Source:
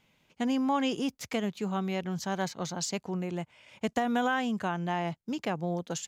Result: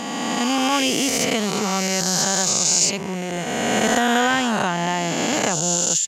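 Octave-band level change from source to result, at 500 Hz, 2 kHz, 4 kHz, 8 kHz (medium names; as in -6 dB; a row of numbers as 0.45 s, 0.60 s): +10.5 dB, +13.5 dB, +17.5 dB, +23.5 dB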